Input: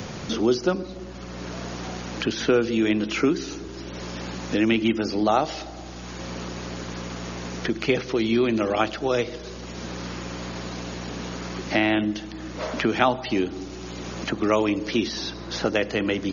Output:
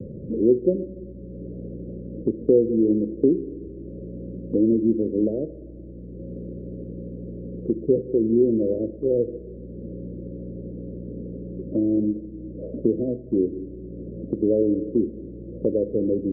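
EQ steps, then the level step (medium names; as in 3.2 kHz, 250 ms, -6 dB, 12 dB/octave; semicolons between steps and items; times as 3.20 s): steep low-pass 560 Hz 96 dB/octave; dynamic bell 420 Hz, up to +4 dB, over -33 dBFS, Q 1.3; 0.0 dB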